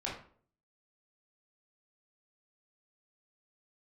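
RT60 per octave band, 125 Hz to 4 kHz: 0.65 s, 0.60 s, 0.55 s, 0.45 s, 0.40 s, 0.35 s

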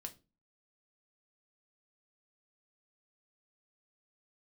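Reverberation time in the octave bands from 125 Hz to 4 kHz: 0.45 s, 0.45 s, 0.35 s, 0.25 s, 0.25 s, 0.25 s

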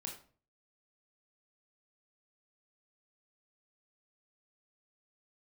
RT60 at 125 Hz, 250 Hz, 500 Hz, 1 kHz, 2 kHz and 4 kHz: 0.65 s, 0.50 s, 0.45 s, 0.40 s, 0.35 s, 0.30 s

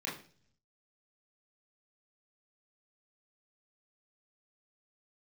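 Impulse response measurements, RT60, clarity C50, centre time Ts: 0.45 s, 8.0 dB, 34 ms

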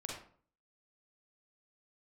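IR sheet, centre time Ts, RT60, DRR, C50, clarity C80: 45 ms, 0.50 s, -2.0 dB, 1.0 dB, 6.5 dB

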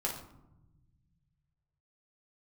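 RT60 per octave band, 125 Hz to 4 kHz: 2.8 s, 2.2 s, 0.95 s, 0.85 s, 0.55 s, 0.45 s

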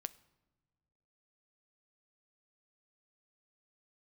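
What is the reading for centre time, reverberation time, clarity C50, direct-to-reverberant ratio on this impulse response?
2 ms, no single decay rate, 20.5 dB, 14.5 dB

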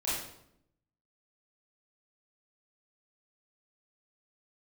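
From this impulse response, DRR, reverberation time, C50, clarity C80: -10.5 dB, 0.75 s, 0.0 dB, 4.5 dB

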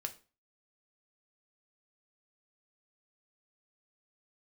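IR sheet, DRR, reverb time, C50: 5.5 dB, 0.35 s, 15.5 dB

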